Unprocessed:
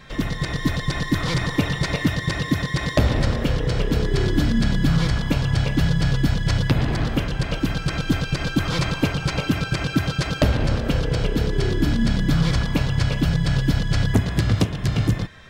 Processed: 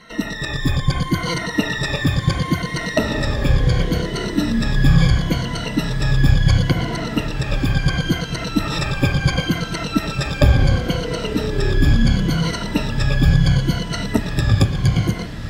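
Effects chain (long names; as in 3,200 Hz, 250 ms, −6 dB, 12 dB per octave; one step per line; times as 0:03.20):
rippled gain that drifts along the octave scale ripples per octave 1.9, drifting −0.72 Hz, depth 21 dB
on a send: feedback delay with all-pass diffusion 1,061 ms, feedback 71%, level −14.5 dB
on the sum: level −2 dB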